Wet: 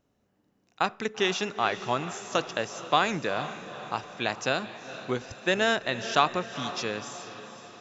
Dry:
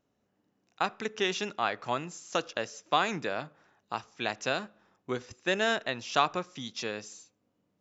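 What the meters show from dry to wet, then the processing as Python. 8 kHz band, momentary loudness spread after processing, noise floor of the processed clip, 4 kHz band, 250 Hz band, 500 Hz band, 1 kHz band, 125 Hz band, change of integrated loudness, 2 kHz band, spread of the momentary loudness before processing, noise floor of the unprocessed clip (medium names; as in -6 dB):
no reading, 14 LU, -72 dBFS, +3.5 dB, +4.0 dB, +3.5 dB, +3.5 dB, +5.5 dB, +3.5 dB, +3.5 dB, 11 LU, -77 dBFS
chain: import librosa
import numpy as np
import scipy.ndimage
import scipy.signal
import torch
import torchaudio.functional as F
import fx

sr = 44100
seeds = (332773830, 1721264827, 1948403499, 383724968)

y = fx.low_shelf(x, sr, hz=80.0, db=8.5)
y = fx.echo_diffused(y, sr, ms=457, feedback_pct=54, wet_db=-12.5)
y = F.gain(torch.from_numpy(y), 3.0).numpy()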